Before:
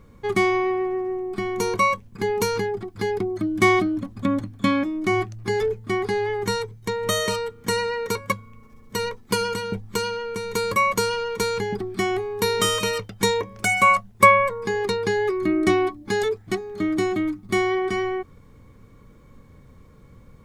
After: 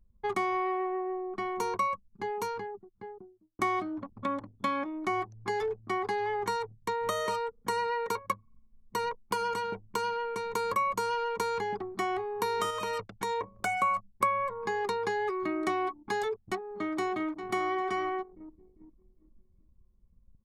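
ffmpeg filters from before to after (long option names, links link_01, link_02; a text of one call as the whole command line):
ffmpeg -i in.wav -filter_complex "[0:a]asettb=1/sr,asplit=3[link_01][link_02][link_03];[link_01]atrim=end=12.704[link_04];[link_02]atrim=start=12.7:end=13.62,asetpts=PTS-STARTPTS,afade=type=in:duration=0.004:curve=qsin,afade=type=out:start_time=0.916:duration=0.004:curve=qsin,acompressor=threshold=-23dB:ratio=6:attack=3.2:release=140:knee=1:detection=peak[link_05];[link_03]atrim=start=13.616[link_06];[link_04][link_05]acrossfade=duration=0.004:curve1=hsin:curve2=qsin[link_07];[link_07][link_06]acrossfade=duration=0.004:curve1=qsin:curve2=hsin,asplit=2[link_08][link_09];[link_09]afade=type=in:start_time=16.59:duration=0.01,afade=type=out:start_time=17.29:duration=0.01,aecho=0:1:400|800|1200|1600|2000|2400|2800:0.298538|0.179123|0.107474|0.0644843|0.0386906|0.0232143|0.0139286[link_10];[link_08][link_10]amix=inputs=2:normalize=0,asplit=2[link_11][link_12];[link_11]atrim=end=3.59,asetpts=PTS-STARTPTS,afade=type=out:start_time=1.15:duration=2.44[link_13];[link_12]atrim=start=3.59,asetpts=PTS-STARTPTS,afade=type=in:duration=0.004:curve=hsin[link_14];[link_13][link_14]concat=n=2:v=0:a=1,anlmdn=3.98,equalizer=frequency=960:width_type=o:width=1.1:gain=10,acrossover=split=330|1800[link_15][link_16][link_17];[link_15]acompressor=threshold=-39dB:ratio=4[link_18];[link_16]acompressor=threshold=-22dB:ratio=4[link_19];[link_17]acompressor=threshold=-34dB:ratio=4[link_20];[link_18][link_19][link_20]amix=inputs=3:normalize=0,volume=-7dB" out.wav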